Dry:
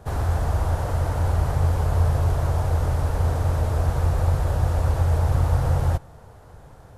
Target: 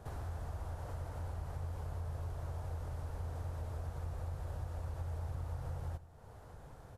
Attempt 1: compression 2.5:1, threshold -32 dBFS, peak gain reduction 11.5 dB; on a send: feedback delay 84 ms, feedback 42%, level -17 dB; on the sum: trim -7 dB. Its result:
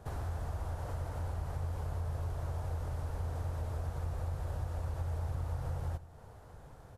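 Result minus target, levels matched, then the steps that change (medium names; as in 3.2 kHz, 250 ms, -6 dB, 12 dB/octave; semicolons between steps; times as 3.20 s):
compression: peak gain reduction -4 dB
change: compression 2.5:1, threshold -39 dBFS, peak gain reduction 15.5 dB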